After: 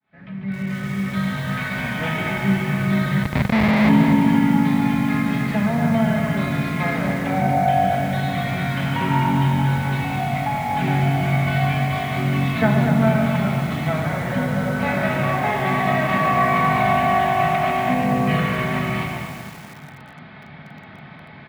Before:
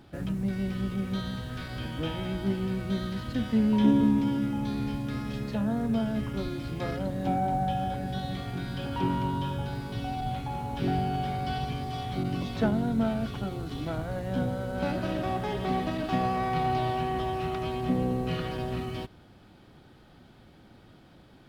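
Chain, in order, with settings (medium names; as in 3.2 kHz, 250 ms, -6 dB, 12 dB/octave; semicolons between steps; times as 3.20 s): fade-in on the opening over 1.72 s; peaking EQ 1.5 kHz +10 dB 2.6 oct; in parallel at +1.5 dB: compression 8:1, threshold -36 dBFS, peak gain reduction 20 dB; on the sum: frequency-shifting echo 143 ms, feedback 39%, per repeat -50 Hz, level -6.5 dB; on a send at -1 dB: reverberation RT60 0.80 s, pre-delay 5 ms; 3.23–3.89 s: on the sum: Schmitt trigger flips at -15 dBFS; cabinet simulation 110–3700 Hz, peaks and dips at 140 Hz +6 dB, 300 Hz -6 dB, 440 Hz -8 dB, 1.4 kHz -5 dB, 2.1 kHz +9 dB, 3 kHz -5 dB; bit-crushed delay 240 ms, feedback 55%, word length 6-bit, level -7 dB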